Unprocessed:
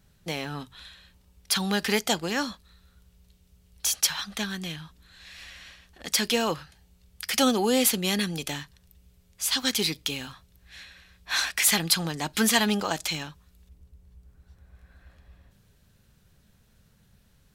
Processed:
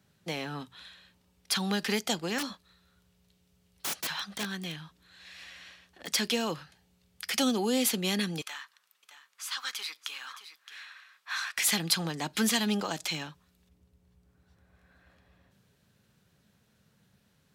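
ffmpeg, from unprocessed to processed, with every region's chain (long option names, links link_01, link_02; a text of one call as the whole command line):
ffmpeg -i in.wav -filter_complex "[0:a]asettb=1/sr,asplit=3[link_01][link_02][link_03];[link_01]atrim=end=2.384[link_04];[link_02]atrim=start=2.38:end=6.12,asetpts=PTS-STARTPTS,afade=type=in:duration=0.004:curve=qsin,afade=type=out:start_time=3.736:duration=0.004:curve=qsin,bandreject=frequency=230:width=7,aeval=exprs='(mod(11.9*val(0)+1,2)-1)/11.9':channel_layout=same[link_05];[link_03]atrim=start=6.116[link_06];[link_04][link_05]acrossfade=duration=0.004:curve1=hsin:curve2=qsin[link_07];[link_07][link_06]acrossfade=duration=0.004:curve1=qsin:curve2=hsin,asettb=1/sr,asplit=3[link_08][link_09][link_10];[link_08]atrim=end=8.414[link_11];[link_09]atrim=start=8.41:end=11.57,asetpts=PTS-STARTPTS,afade=type=in:duration=0.004:curve=qsin,afade=type=out:start_time=3.156:duration=0.004:curve=qsin,aecho=1:1:617:0.119,atrim=end_sample=139356,acompressor=threshold=-42dB:ratio=1.5:attack=3.2:release=140:knee=1:detection=peak,highpass=frequency=1200:width_type=q:width=2.6[link_12];[link_10]atrim=start=11.566[link_13];[link_11][link_12]acrossfade=duration=0.004:curve1=hsin:curve2=qsin[link_14];[link_14][link_13]acrossfade=duration=0.004:curve1=qsin:curve2=hsin,highpass=130,highshelf=frequency=6900:gain=-5.5,acrossover=split=320|3000[link_15][link_16][link_17];[link_16]acompressor=threshold=-29dB:ratio=6[link_18];[link_15][link_18][link_17]amix=inputs=3:normalize=0,volume=-2dB" out.wav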